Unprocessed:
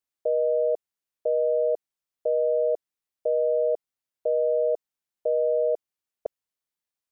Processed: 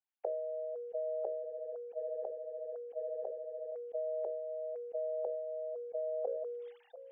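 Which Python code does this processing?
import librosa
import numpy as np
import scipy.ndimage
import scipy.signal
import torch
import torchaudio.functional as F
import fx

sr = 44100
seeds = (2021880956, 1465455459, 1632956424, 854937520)

y = fx.sine_speech(x, sr)
y = y + 10.0 ** (-24.0 / 20.0) * np.pad(y, (int(686 * sr / 1000.0), 0))[:len(y)]
y = fx.gate_flip(y, sr, shuts_db=-36.0, range_db=-31)
y = fx.rider(y, sr, range_db=3, speed_s=0.5)
y = fx.tremolo(y, sr, hz=14.0, depth=0.89, at=(1.41, 3.72))
y = scipy.signal.sosfilt(scipy.signal.cheby1(5, 1.0, 380.0, 'highpass', fs=sr, output='sos'), y)
y = fx.peak_eq(y, sr, hz=540.0, db=8.0, octaves=0.43)
y = fx.hum_notches(y, sr, base_hz=60, count=9)
y = fx.sustainer(y, sr, db_per_s=29.0)
y = y * librosa.db_to_amplitude(9.0)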